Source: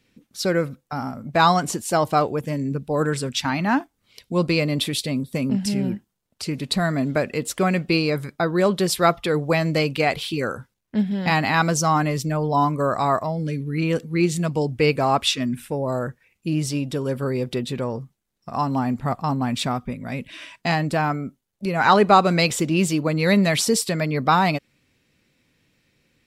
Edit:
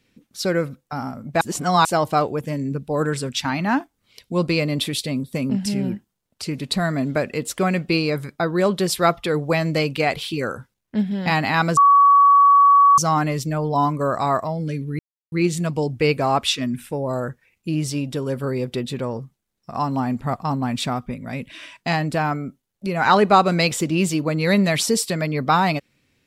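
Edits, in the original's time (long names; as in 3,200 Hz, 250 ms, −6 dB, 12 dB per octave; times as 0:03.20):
0:01.41–0:01.85: reverse
0:11.77: insert tone 1,130 Hz −9 dBFS 1.21 s
0:13.78–0:14.11: silence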